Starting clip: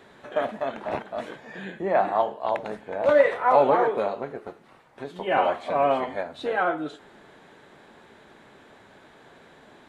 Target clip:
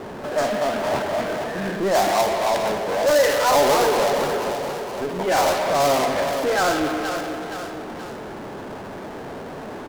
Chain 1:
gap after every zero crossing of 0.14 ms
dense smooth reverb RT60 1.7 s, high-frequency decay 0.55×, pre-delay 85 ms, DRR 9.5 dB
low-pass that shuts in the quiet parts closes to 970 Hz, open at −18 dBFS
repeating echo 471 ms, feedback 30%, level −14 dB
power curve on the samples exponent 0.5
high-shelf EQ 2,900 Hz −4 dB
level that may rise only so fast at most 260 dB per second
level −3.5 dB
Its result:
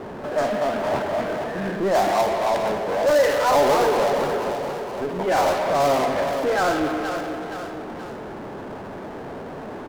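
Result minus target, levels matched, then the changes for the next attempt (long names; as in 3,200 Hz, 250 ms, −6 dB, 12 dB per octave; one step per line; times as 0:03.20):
8,000 Hz band −5.5 dB
change: high-shelf EQ 2,900 Hz +3.5 dB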